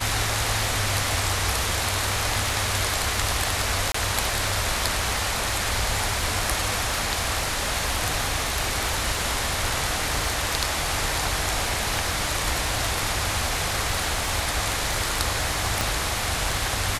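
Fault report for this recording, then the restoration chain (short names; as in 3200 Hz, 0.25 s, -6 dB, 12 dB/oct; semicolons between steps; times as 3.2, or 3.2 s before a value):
crackle 32/s -28 dBFS
3.92–3.94 gap 24 ms
15.81 pop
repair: de-click; interpolate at 3.92, 24 ms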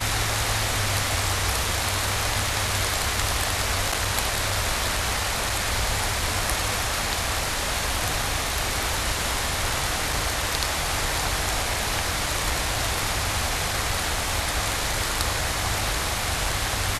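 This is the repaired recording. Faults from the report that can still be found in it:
none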